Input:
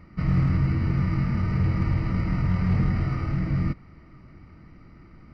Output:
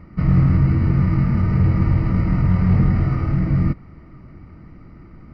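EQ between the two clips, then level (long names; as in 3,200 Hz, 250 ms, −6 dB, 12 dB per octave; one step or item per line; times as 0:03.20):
high-shelf EQ 2,000 Hz −10 dB
+7.0 dB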